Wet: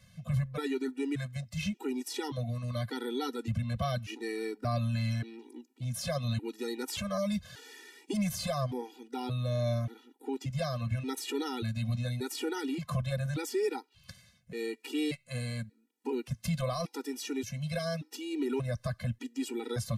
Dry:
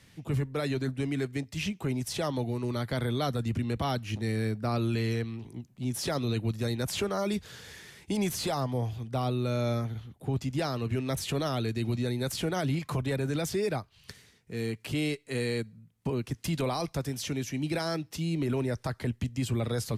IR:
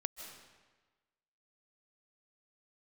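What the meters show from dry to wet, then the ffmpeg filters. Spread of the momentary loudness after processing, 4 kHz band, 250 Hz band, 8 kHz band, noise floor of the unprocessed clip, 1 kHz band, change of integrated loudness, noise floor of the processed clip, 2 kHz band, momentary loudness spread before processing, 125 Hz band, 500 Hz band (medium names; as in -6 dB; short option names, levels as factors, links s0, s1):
8 LU, -3.5 dB, -3.5 dB, -3.5 dB, -62 dBFS, -4.0 dB, -3.0 dB, -68 dBFS, -3.5 dB, 6 LU, -3.0 dB, -3.0 dB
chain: -af "afftfilt=real='re*gt(sin(2*PI*0.86*pts/sr)*(1-2*mod(floor(b*sr/1024/250),2)),0)':imag='im*gt(sin(2*PI*0.86*pts/sr)*(1-2*mod(floor(b*sr/1024/250),2)),0)':win_size=1024:overlap=0.75"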